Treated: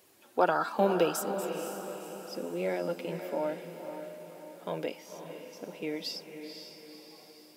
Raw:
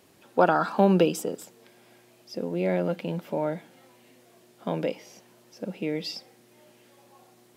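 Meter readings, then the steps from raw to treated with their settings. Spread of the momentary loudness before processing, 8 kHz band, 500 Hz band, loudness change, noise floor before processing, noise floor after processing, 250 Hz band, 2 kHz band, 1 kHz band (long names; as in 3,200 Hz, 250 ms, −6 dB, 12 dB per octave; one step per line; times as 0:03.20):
17 LU, +0.5 dB, −4.0 dB, −6.5 dB, −59 dBFS, −57 dBFS, −8.0 dB, −3.5 dB, −4.0 dB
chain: low-shelf EQ 200 Hz −10 dB
flanger 1.9 Hz, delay 1.7 ms, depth 2 ms, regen −45%
high-shelf EQ 9,200 Hz +9.5 dB
feedback delay with all-pass diffusion 508 ms, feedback 50%, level −8 dB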